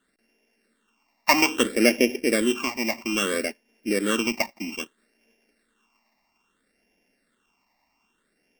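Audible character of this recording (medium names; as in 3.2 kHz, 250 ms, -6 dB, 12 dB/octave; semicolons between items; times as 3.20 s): a buzz of ramps at a fixed pitch in blocks of 16 samples; phasing stages 8, 0.61 Hz, lowest notch 430–1200 Hz; AC-3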